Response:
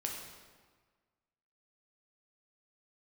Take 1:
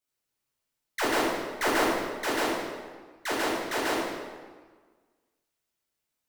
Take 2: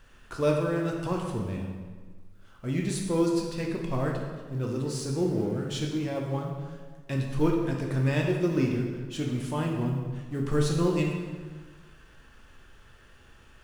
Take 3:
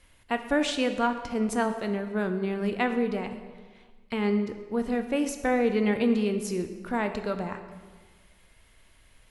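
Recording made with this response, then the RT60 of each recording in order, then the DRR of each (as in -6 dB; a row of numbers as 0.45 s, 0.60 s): 2; 1.5 s, 1.5 s, 1.5 s; -8.0 dB, -0.5 dB, 7.0 dB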